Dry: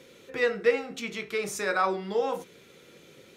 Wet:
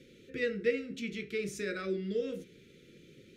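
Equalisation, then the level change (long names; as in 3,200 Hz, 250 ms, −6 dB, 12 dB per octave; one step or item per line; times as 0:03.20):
Butterworth band-reject 880 Hz, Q 0.52
spectral tilt −3.5 dB per octave
low-shelf EQ 280 Hz −11 dB
0.0 dB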